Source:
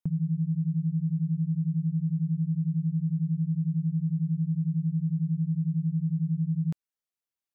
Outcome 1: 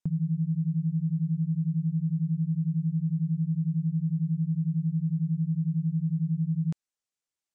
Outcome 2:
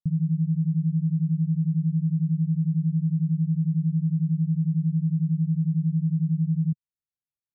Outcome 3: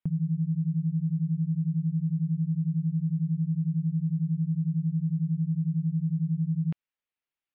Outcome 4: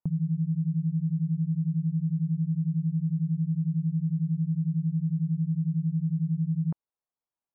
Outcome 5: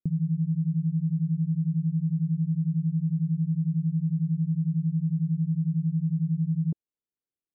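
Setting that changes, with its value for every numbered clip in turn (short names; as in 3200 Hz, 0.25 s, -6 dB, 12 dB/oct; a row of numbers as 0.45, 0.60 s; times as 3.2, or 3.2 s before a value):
synth low-pass, frequency: 7700, 150, 2700, 970, 380 Hz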